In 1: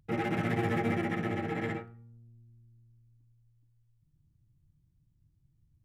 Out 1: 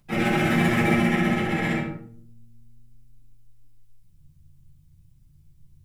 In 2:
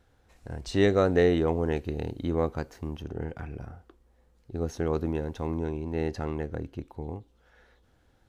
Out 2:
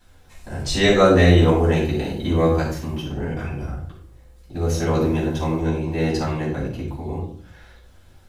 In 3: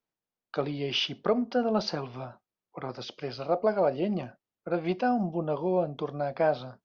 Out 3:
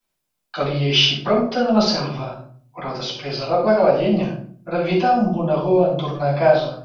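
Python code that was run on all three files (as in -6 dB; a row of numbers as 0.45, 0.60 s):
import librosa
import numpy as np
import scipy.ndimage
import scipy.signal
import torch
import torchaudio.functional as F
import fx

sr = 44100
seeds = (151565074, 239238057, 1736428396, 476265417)

y = fx.high_shelf(x, sr, hz=2400.0, db=12.0)
y = fx.hum_notches(y, sr, base_hz=50, count=7)
y = fx.room_shoebox(y, sr, seeds[0], volume_m3=540.0, walls='furnished', distance_m=8.7)
y = F.gain(torch.from_numpy(y), -4.0).numpy()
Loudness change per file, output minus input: +9.5, +9.0, +11.0 LU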